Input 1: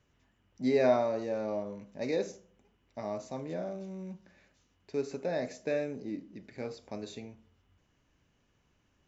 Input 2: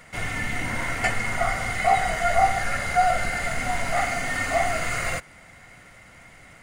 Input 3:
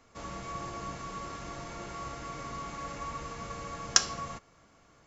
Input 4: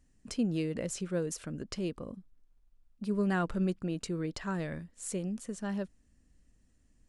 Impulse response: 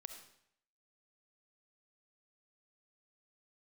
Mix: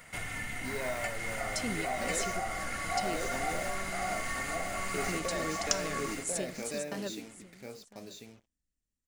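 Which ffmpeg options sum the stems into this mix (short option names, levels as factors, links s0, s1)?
-filter_complex "[0:a]dynaudnorm=f=790:g=5:m=3.55,acrusher=bits=6:mix=0:aa=0.5,volume=0.251,asplit=3[s0][s1][s2];[s1]volume=0.501[s3];[1:a]volume=0.501,asplit=2[s4][s5];[s5]volume=0.251[s6];[2:a]aecho=1:1:3.5:0.65,adelay=1750,volume=1.06[s7];[3:a]adelay=1250,volume=1,asplit=2[s8][s9];[s9]volume=0.0708[s10];[s2]apad=whole_len=367479[s11];[s8][s11]sidechaingate=range=0.0224:threshold=0.00282:ratio=16:detection=peak[s12];[s4][s7]amix=inputs=2:normalize=0,equalizer=f=5200:t=o:w=1.5:g=-4.5,acompressor=threshold=0.0126:ratio=3,volume=1[s13];[s0][s12]amix=inputs=2:normalize=0,highpass=f=320:p=1,alimiter=level_in=1.68:limit=0.0631:level=0:latency=1:release=17,volume=0.596,volume=1[s14];[s3][s6][s10]amix=inputs=3:normalize=0,aecho=0:1:1043:1[s15];[s13][s14][s15]amix=inputs=3:normalize=0,highshelf=f=2800:g=9.5"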